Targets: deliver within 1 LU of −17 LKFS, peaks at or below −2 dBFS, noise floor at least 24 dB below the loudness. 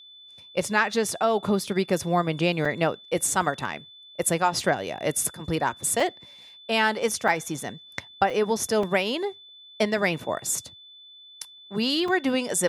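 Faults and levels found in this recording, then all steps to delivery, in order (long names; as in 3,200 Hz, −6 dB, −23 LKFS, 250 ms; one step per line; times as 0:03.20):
number of dropouts 6; longest dropout 3.5 ms; interfering tone 3,500 Hz; level of the tone −46 dBFS; integrated loudness −25.5 LKFS; sample peak −7.5 dBFS; target loudness −17.0 LKFS
→ repair the gap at 0:02.65/0:06.00/0:07.28/0:08.30/0:08.83/0:12.08, 3.5 ms
notch filter 3,500 Hz, Q 30
level +8.5 dB
brickwall limiter −2 dBFS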